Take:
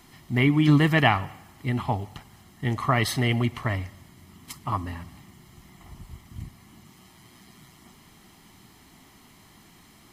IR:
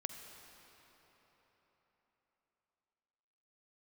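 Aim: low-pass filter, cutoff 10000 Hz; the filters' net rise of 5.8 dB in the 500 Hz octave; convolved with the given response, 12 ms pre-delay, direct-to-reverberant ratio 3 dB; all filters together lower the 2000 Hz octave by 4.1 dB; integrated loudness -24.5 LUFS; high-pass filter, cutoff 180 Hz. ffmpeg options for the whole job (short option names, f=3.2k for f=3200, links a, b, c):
-filter_complex "[0:a]highpass=180,lowpass=10k,equalizer=f=500:t=o:g=8.5,equalizer=f=2k:t=o:g=-5,asplit=2[a][b];[1:a]atrim=start_sample=2205,adelay=12[c];[b][c]afir=irnorm=-1:irlink=0,volume=-2dB[d];[a][d]amix=inputs=2:normalize=0,volume=-1dB"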